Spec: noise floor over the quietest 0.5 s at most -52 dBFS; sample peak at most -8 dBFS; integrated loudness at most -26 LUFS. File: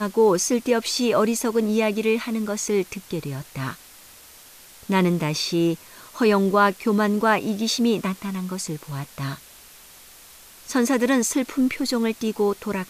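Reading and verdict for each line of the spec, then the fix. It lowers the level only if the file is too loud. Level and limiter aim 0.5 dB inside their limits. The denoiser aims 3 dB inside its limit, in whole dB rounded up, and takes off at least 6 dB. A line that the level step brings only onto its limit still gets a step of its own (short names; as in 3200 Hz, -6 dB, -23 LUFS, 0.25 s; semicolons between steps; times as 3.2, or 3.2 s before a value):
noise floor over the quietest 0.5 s -47 dBFS: fail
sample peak -6.5 dBFS: fail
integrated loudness -22.5 LUFS: fail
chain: denoiser 6 dB, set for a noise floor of -47 dBFS; gain -4 dB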